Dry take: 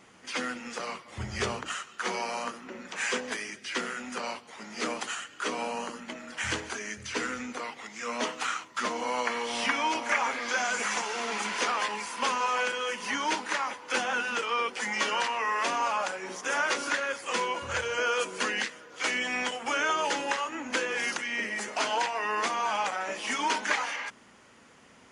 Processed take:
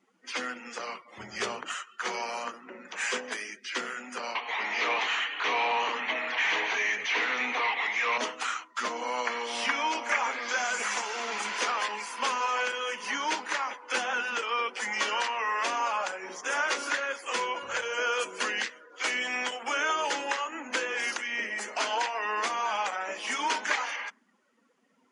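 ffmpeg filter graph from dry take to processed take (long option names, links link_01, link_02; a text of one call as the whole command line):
ffmpeg -i in.wav -filter_complex "[0:a]asettb=1/sr,asplit=3[link_01][link_02][link_03];[link_01]atrim=end=4.354[link_04];[link_02]atrim=start=4.35:end=8.18,asetpts=PTS-STARTPTS,afade=type=in:duration=0.004:curve=qsin,afade=type=out:start_time=3.826:duration=0.004:curve=qsin,asplit=2[link_05][link_06];[link_06]highpass=frequency=720:poles=1,volume=29dB,asoftclip=type=tanh:threshold=-15.5dB[link_07];[link_05][link_07]amix=inputs=2:normalize=0,lowpass=frequency=2000:poles=1,volume=-6dB,highpass=200,equalizer=frequency=220:width_type=q:width=4:gain=-9,equalizer=frequency=350:width_type=q:width=4:gain=-8,equalizer=frequency=560:width_type=q:width=4:gain=-9,equalizer=frequency=1400:width_type=q:width=4:gain=-10,equalizer=frequency=2200:width_type=q:width=4:gain=4,equalizer=frequency=4900:width_type=q:width=4:gain=-8,lowpass=frequency=5800:width=0.5412,lowpass=frequency=5800:width=1.3066[link_08];[link_03]atrim=start=8.176[link_09];[link_04][link_08]acrossfade=duration=0.004:curve1=hsin:curve2=qsin[link_10];[link_10][link_09]acrossfade=duration=0.004:curve1=qsin:curve2=hsin,afftdn=noise_reduction=18:noise_floor=-48,highpass=230,lowshelf=frequency=450:gain=-4" out.wav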